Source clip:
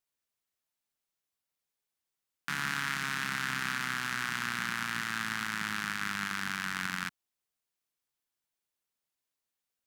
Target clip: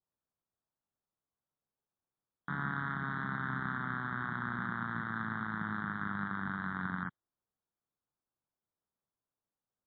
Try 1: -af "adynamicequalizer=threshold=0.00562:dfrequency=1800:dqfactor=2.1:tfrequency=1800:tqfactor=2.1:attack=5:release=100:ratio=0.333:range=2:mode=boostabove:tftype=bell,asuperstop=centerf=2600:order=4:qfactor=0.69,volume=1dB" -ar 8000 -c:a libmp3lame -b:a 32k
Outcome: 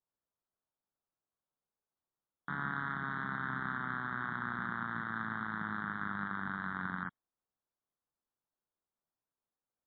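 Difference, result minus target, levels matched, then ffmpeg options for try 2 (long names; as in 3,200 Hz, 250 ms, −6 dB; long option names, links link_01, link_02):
125 Hz band −3.5 dB
-af "adynamicequalizer=threshold=0.00562:dfrequency=1800:dqfactor=2.1:tfrequency=1800:tqfactor=2.1:attack=5:release=100:ratio=0.333:range=2:mode=boostabove:tftype=bell,asuperstop=centerf=2600:order=4:qfactor=0.69,equalizer=frequency=120:width=0.68:gain=5,volume=1dB" -ar 8000 -c:a libmp3lame -b:a 32k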